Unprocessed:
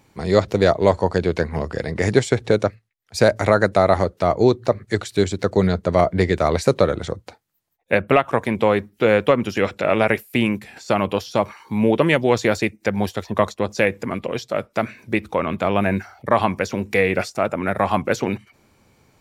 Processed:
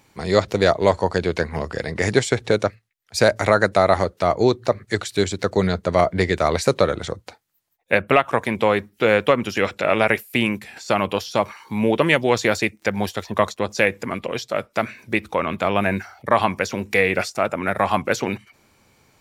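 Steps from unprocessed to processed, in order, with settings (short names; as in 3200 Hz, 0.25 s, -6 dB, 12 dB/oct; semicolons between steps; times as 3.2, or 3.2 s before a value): tilt shelf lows -3 dB, about 780 Hz; 11.43–13.62 crackle 34/s -41 dBFS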